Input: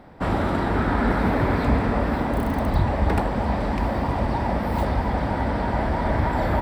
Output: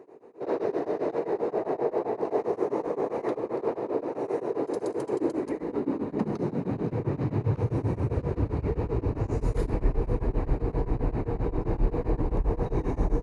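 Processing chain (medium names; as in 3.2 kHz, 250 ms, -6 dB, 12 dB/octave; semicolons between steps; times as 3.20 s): peak limiter -15 dBFS, peak gain reduction 6.5 dB; high-pass sweep 820 Hz -> 71 Hz, 2.41–4.94 s; speed mistake 15 ips tape played at 7.5 ips; tremolo of two beating tones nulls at 7.6 Hz; trim -1.5 dB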